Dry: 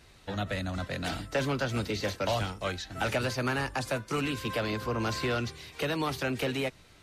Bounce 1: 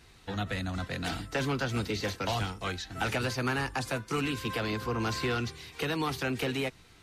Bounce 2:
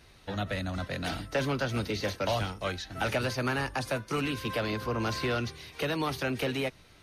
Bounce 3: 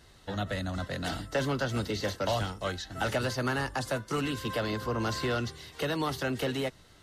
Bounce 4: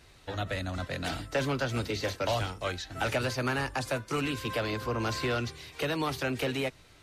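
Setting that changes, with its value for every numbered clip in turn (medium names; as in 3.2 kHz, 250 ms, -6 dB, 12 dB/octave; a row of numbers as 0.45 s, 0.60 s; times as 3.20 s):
band-stop, frequency: 590 Hz, 7.5 kHz, 2.4 kHz, 200 Hz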